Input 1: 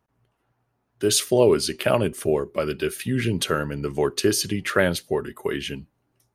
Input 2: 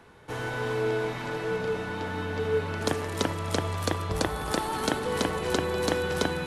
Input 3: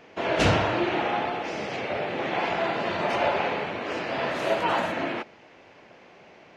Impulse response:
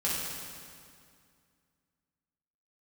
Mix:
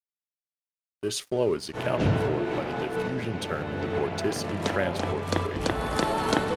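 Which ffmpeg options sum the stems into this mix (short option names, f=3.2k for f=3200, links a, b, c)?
-filter_complex "[0:a]aeval=exprs='sgn(val(0))*max(abs(val(0))-0.0158,0)':c=same,agate=range=-20dB:threshold=-42dB:ratio=16:detection=peak,volume=-7.5dB,asplit=2[a][b];[1:a]adelay=1450,volume=2.5dB[c];[2:a]equalizer=f=140:w=0.37:g=14.5,adelay=1600,volume=-12.5dB[d];[b]apad=whole_len=349244[e];[c][e]sidechaincompress=threshold=-39dB:ratio=8:attack=31:release=225[f];[a][f][d]amix=inputs=3:normalize=0,highshelf=f=10k:g=-12"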